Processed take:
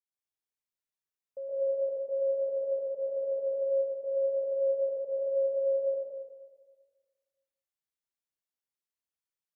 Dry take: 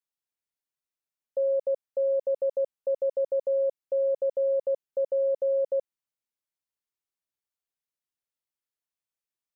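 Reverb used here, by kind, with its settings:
dense smooth reverb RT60 1.5 s, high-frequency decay 0.95×, pre-delay 105 ms, DRR −8.5 dB
level −13 dB

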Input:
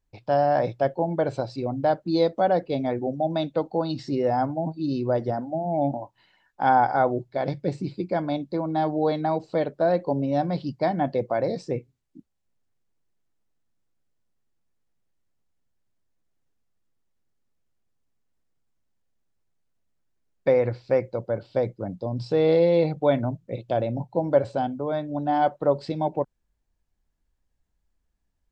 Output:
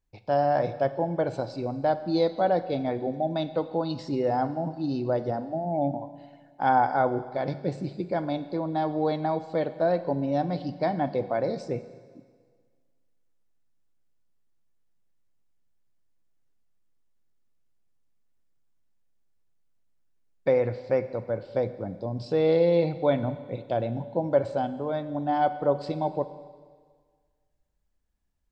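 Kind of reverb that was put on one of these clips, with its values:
four-comb reverb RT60 1.7 s, combs from 31 ms, DRR 12.5 dB
level −2.5 dB

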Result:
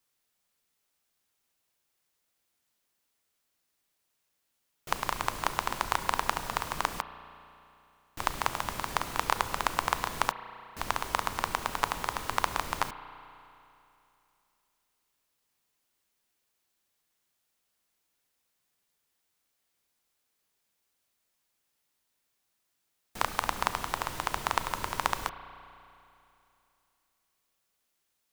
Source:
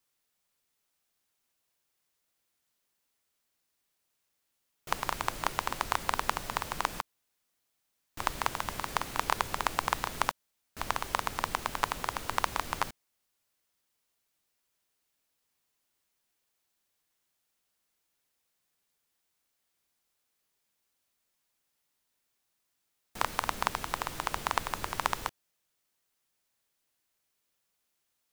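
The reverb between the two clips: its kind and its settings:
spring reverb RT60 2.8 s, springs 33 ms, chirp 20 ms, DRR 11.5 dB
level +1 dB

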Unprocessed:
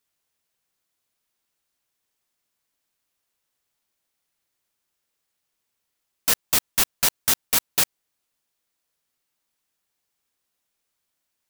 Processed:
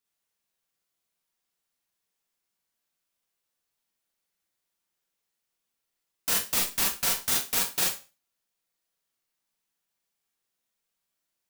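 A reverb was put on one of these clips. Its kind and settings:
four-comb reverb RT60 0.31 s, combs from 33 ms, DRR −1.5 dB
level −8 dB

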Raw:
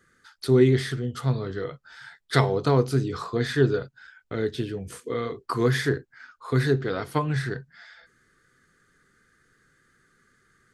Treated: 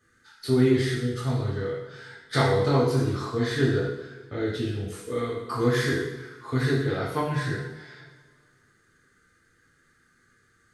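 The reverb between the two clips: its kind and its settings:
coupled-rooms reverb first 0.83 s, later 2.3 s, from −18 dB, DRR −7 dB
level −7.5 dB

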